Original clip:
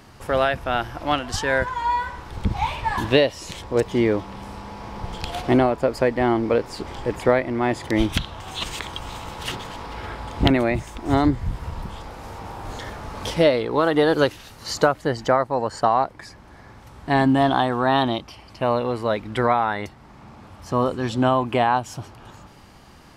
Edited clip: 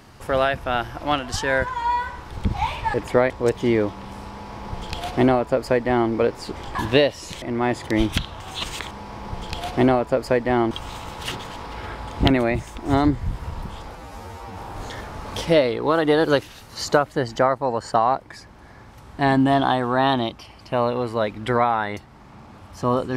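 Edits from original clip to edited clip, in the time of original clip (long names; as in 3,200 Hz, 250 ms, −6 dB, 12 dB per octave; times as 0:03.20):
0:02.94–0:03.61: swap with 0:07.06–0:07.42
0:04.62–0:06.42: duplicate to 0:08.91
0:12.15–0:12.46: time-stretch 2×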